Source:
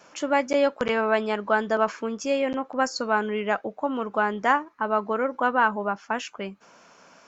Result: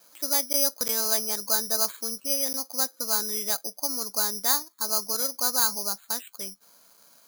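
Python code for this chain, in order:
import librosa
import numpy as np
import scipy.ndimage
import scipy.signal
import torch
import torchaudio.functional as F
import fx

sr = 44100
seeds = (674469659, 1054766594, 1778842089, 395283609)

y = (np.kron(scipy.signal.resample_poly(x, 1, 8), np.eye(8)[0]) * 8)[:len(x)]
y = F.gain(torch.from_numpy(y), -11.5).numpy()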